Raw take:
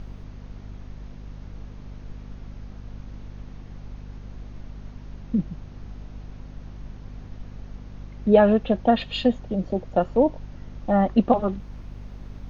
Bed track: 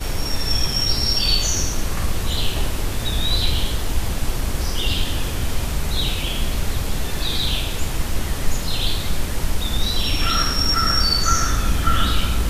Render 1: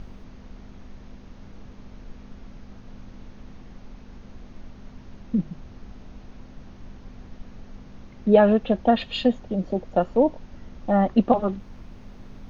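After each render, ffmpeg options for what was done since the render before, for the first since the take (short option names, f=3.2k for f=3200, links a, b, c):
-af "bandreject=f=50:t=h:w=4,bandreject=f=100:t=h:w=4,bandreject=f=150:t=h:w=4"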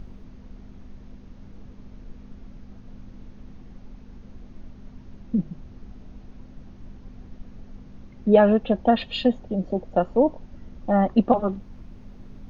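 -af "afftdn=nr=6:nf=-46"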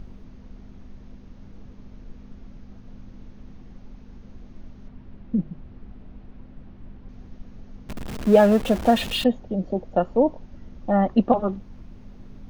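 -filter_complex "[0:a]asettb=1/sr,asplit=3[a][b][c];[a]atrim=end=4.884[d];[b]atrim=start=4.88:end=7.09,asetpts=PTS-STARTPTS,afade=t=in:d=0.004:c=qsin,afade=t=out:st=2.206:d=0.004:c=qsin,lowpass=3.3k[e];[c]atrim=start=7.086[f];[d][e]acrossfade=d=0.004:c1=hsin:c2=qsin[g];[g][f]acrossfade=d=0.004:c1=qsin:c2=hsin,asettb=1/sr,asplit=3[h][i][j];[h]atrim=end=7.894[k];[i]atrim=start=7.89:end=9.24,asetpts=PTS-STARTPTS,afade=t=in:d=0.004:c=qsin,afade=t=out:st=1.346:d=0.004:c=qsin,aeval=exprs='val(0)+0.5*0.0422*sgn(val(0))':c=same[l];[j]atrim=start=9.236[m];[k][l]acrossfade=d=0.004:c1=hsin:c2=qsin[n];[n][m]acrossfade=d=0.004:c1=qsin:c2=hsin"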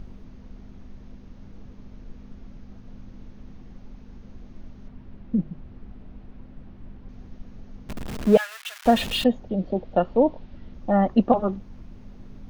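-filter_complex "[0:a]asettb=1/sr,asplit=3[a][b][c];[a]atrim=end=8.374[d];[b]atrim=start=8.37:end=8.86,asetpts=PTS-STARTPTS,afade=t=in:d=0.004:c=qsin,afade=t=out:st=0.486:d=0.004:c=qsin,highpass=f=1.4k:w=0.5412,highpass=f=1.4k:w=1.3066[e];[c]atrim=start=8.856[f];[d][e]acrossfade=d=0.004:c1=hsin:c2=qsin[g];[g][f]acrossfade=d=0.004:c1=qsin:c2=hsin,asettb=1/sr,asplit=3[h][i][j];[h]atrim=end=9.494[k];[i]atrim=start=9.49:end=10.74,asetpts=PTS-STARTPTS,afade=t=in:d=0.004:c=qsin,afade=t=out:st=1.246:d=0.004:c=qsin,lowpass=f=3.8k:t=q:w=1.6[l];[j]atrim=start=10.736[m];[k][l]acrossfade=d=0.004:c1=hsin:c2=qsin[n];[n][m]acrossfade=d=0.004:c1=qsin:c2=hsin"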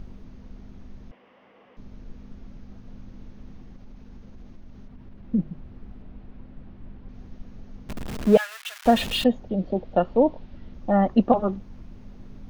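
-filter_complex "[0:a]asettb=1/sr,asplit=3[a][b][c];[a]atrim=end=1.114[d];[b]atrim=start=1.11:end=1.77,asetpts=PTS-STARTPTS,afade=t=in:d=0.004:c=qsin,afade=t=out:st=0.656:d=0.004:c=qsin,highpass=480,equalizer=f=510:t=q:w=4:g=7,equalizer=f=730:t=q:w=4:g=5,equalizer=f=1.1k:t=q:w=4:g=7,equalizer=f=2k:t=q:w=4:g=8,equalizer=f=2.9k:t=q:w=4:g=7,equalizer=f=4.1k:t=q:w=4:g=-10,lowpass=f=4.2k:w=0.5412,lowpass=f=4.2k:w=1.3066[e];[c]atrim=start=1.766[f];[d][e]acrossfade=d=0.004:c1=hsin:c2=qsin[g];[g][f]acrossfade=d=0.004:c1=qsin:c2=hsin,asettb=1/sr,asplit=3[h][i][j];[h]atrim=end=3.644[k];[i]atrim=start=3.64:end=5.23,asetpts=PTS-STARTPTS,afade=t=in:d=0.004:c=qsin,afade=t=out:st=1.586:d=0.004:c=qsin,acompressor=threshold=-38dB:ratio=6:attack=3.2:release=140:knee=1:detection=peak[l];[j]atrim=start=5.226[m];[k][l]acrossfade=d=0.004:c1=hsin:c2=qsin[n];[n][m]acrossfade=d=0.004:c1=qsin:c2=hsin,asettb=1/sr,asplit=3[o][p][q];[o]atrim=end=6.024[r];[p]atrim=start=6.02:end=7.15,asetpts=PTS-STARTPTS,afade=t=in:d=0.004:c=qsin,afade=t=out:st=1.126:d=0.004:c=qsin,lowpass=5.2k[s];[q]atrim=start=7.146[t];[r][s]acrossfade=d=0.004:c1=hsin:c2=qsin[u];[u][t]acrossfade=d=0.004:c1=qsin:c2=hsin"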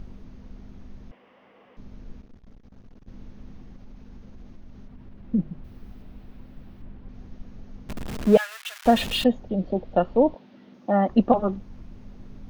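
-filter_complex "[0:a]asettb=1/sr,asplit=3[a][b][c];[a]atrim=end=2.214[d];[b]atrim=start=2.21:end=3.08,asetpts=PTS-STARTPTS,afade=t=in:d=0.004:c=qsin,afade=t=out:st=0.866:d=0.004:c=qsin,aeval=exprs='(tanh(178*val(0)+0.65)-tanh(0.65))/178':c=same[e];[c]atrim=start=3.076[f];[d][e]acrossfade=d=0.004:c1=hsin:c2=qsin[g];[g][f]acrossfade=d=0.004:c1=qsin:c2=hsin,asettb=1/sr,asplit=3[h][i][j];[h]atrim=end=5.644[k];[i]atrim=start=5.64:end=6.82,asetpts=PTS-STARTPTS,afade=t=in:d=0.004:c=qsin,afade=t=out:st=1.176:d=0.004:c=qsin,aemphasis=mode=production:type=75fm[l];[j]atrim=start=6.816[m];[k][l]acrossfade=d=0.004:c1=hsin:c2=qsin[n];[n][m]acrossfade=d=0.004:c1=qsin:c2=hsin,asettb=1/sr,asplit=3[o][p][q];[o]atrim=end=10.354[r];[p]atrim=start=10.35:end=11.09,asetpts=PTS-STARTPTS,afade=t=in:d=0.004:c=qsin,afade=t=out:st=0.736:d=0.004:c=qsin,highpass=f=190:w=0.5412,highpass=f=190:w=1.3066[s];[q]atrim=start=11.086[t];[r][s]acrossfade=d=0.004:c1=hsin:c2=qsin[u];[u][t]acrossfade=d=0.004:c1=qsin:c2=hsin"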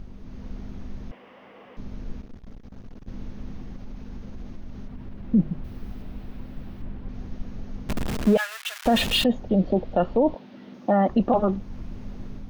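-af "dynaudnorm=f=120:g=5:m=7dB,alimiter=limit=-11.5dB:level=0:latency=1:release=23"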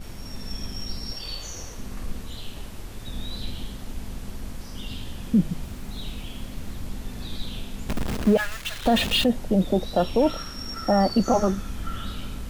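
-filter_complex "[1:a]volume=-16dB[a];[0:a][a]amix=inputs=2:normalize=0"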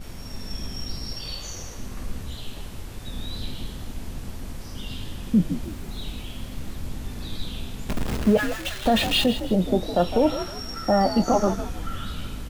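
-filter_complex "[0:a]asplit=2[a][b];[b]adelay=23,volume=-12dB[c];[a][c]amix=inputs=2:normalize=0,asplit=4[d][e][f][g];[e]adelay=158,afreqshift=58,volume=-12dB[h];[f]adelay=316,afreqshift=116,volume=-21.9dB[i];[g]adelay=474,afreqshift=174,volume=-31.8dB[j];[d][h][i][j]amix=inputs=4:normalize=0"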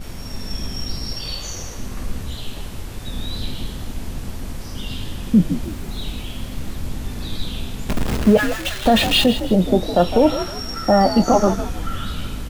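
-af "volume=5.5dB"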